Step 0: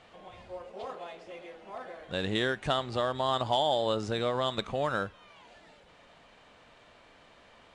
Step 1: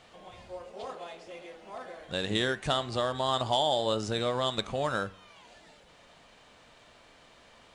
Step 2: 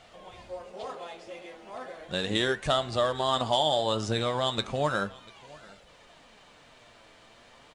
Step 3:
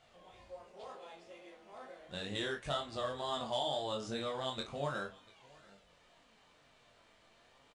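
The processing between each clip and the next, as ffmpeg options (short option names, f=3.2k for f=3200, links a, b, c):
-af "bass=f=250:g=1,treble=f=4k:g=7,bandreject=f=95.58:t=h:w=4,bandreject=f=191.16:t=h:w=4,bandreject=f=286.74:t=h:w=4,bandreject=f=382.32:t=h:w=4,bandreject=f=477.9:t=h:w=4,bandreject=f=573.48:t=h:w=4,bandreject=f=669.06:t=h:w=4,bandreject=f=764.64:t=h:w=4,bandreject=f=860.22:t=h:w=4,bandreject=f=955.8:t=h:w=4,bandreject=f=1.05138k:t=h:w=4,bandreject=f=1.14696k:t=h:w=4,bandreject=f=1.24254k:t=h:w=4,bandreject=f=1.33812k:t=h:w=4,bandreject=f=1.4337k:t=h:w=4,bandreject=f=1.52928k:t=h:w=4,bandreject=f=1.62486k:t=h:w=4,bandreject=f=1.72044k:t=h:w=4,bandreject=f=1.81602k:t=h:w=4,bandreject=f=1.9116k:t=h:w=4,bandreject=f=2.00718k:t=h:w=4,bandreject=f=2.10276k:t=h:w=4,bandreject=f=2.19834k:t=h:w=4,bandreject=f=2.29392k:t=h:w=4,bandreject=f=2.3895k:t=h:w=4,bandreject=f=2.48508k:t=h:w=4,bandreject=f=2.58066k:t=h:w=4,bandreject=f=2.67624k:t=h:w=4,bandreject=f=2.77182k:t=h:w=4,bandreject=f=2.8674k:t=h:w=4,bandreject=f=2.96298k:t=h:w=4,bandreject=f=3.05856k:t=h:w=4"
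-af "flanger=delay=1.4:depth=7.8:regen=59:speed=0.35:shape=sinusoidal,aecho=1:1:691:0.0668,volume=6dB"
-filter_complex "[0:a]flanger=delay=20:depth=3.2:speed=2.1,asplit=2[a][b];[b]adelay=35,volume=-10dB[c];[a][c]amix=inputs=2:normalize=0,volume=-8dB"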